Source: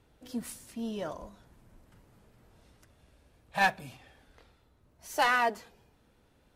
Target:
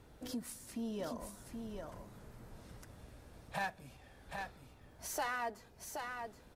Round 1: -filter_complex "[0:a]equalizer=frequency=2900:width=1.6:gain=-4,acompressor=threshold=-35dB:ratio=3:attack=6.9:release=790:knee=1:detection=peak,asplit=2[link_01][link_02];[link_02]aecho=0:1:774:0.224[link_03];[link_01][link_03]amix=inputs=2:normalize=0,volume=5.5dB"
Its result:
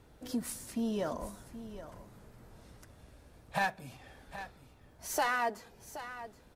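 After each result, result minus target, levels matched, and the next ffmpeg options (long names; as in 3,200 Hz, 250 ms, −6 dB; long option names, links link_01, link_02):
downward compressor: peak gain reduction −7 dB; echo-to-direct −7.5 dB
-filter_complex "[0:a]equalizer=frequency=2900:width=1.6:gain=-4,acompressor=threshold=-45.5dB:ratio=3:attack=6.9:release=790:knee=1:detection=peak,asplit=2[link_01][link_02];[link_02]aecho=0:1:774:0.224[link_03];[link_01][link_03]amix=inputs=2:normalize=0,volume=5.5dB"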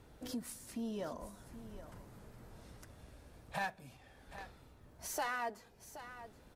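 echo-to-direct −7.5 dB
-filter_complex "[0:a]equalizer=frequency=2900:width=1.6:gain=-4,acompressor=threshold=-45.5dB:ratio=3:attack=6.9:release=790:knee=1:detection=peak,asplit=2[link_01][link_02];[link_02]aecho=0:1:774:0.531[link_03];[link_01][link_03]amix=inputs=2:normalize=0,volume=5.5dB"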